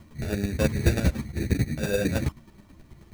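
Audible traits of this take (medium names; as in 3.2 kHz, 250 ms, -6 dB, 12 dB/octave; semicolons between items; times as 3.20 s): aliases and images of a low sample rate 2.1 kHz, jitter 0%; chopped level 9.3 Hz, depth 60%, duty 15%; a shimmering, thickened sound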